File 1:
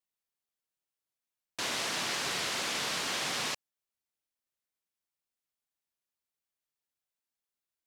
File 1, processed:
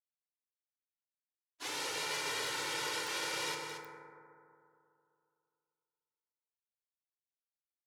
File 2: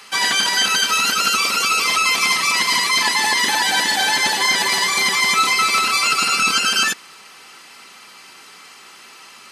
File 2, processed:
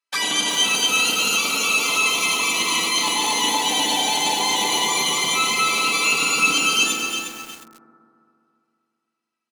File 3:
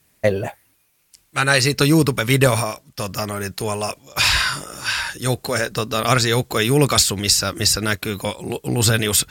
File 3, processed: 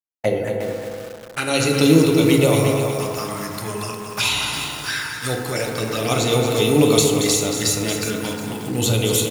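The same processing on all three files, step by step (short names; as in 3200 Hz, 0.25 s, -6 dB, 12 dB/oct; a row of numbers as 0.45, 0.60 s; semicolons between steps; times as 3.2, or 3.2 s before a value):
gate -33 dBFS, range -42 dB; HPF 130 Hz 12 dB/oct; bell 11000 Hz +5 dB 0.27 oct; envelope flanger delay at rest 3.1 ms, full sweep at -16 dBFS; on a send: echo 0.229 s -8.5 dB; on the sum: FDN reverb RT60 2.6 s, high-frequency decay 0.25×, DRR 0.5 dB; lo-fi delay 0.359 s, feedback 35%, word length 5-bit, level -7.5 dB; gain -1.5 dB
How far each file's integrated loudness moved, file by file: -4.5, -2.5, -0.5 LU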